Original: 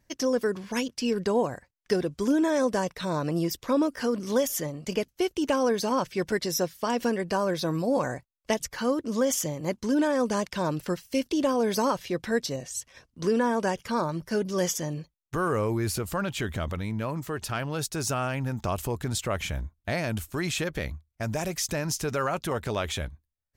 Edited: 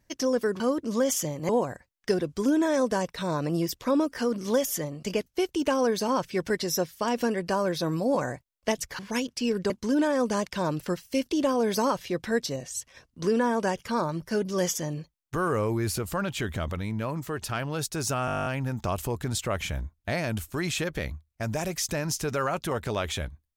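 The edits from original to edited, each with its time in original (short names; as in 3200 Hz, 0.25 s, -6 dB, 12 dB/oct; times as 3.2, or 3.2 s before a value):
0.6–1.31 swap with 8.81–9.7
18.26 stutter 0.02 s, 11 plays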